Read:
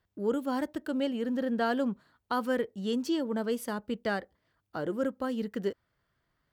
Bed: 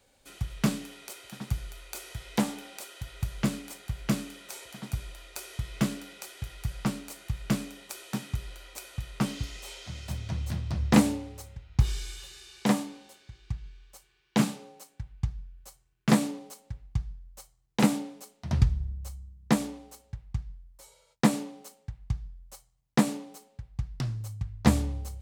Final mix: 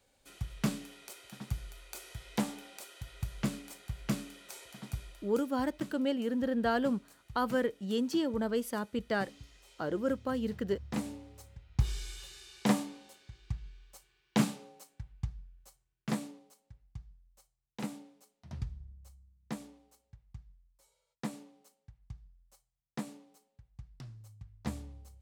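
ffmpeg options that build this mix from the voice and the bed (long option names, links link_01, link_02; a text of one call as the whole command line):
ffmpeg -i stem1.wav -i stem2.wav -filter_complex "[0:a]adelay=5050,volume=-1dB[link_01];[1:a]volume=9dB,afade=type=out:start_time=4.92:duration=0.6:silence=0.251189,afade=type=in:start_time=10.89:duration=1.36:silence=0.188365,afade=type=out:start_time=14.27:duration=2.24:silence=0.223872[link_02];[link_01][link_02]amix=inputs=2:normalize=0" out.wav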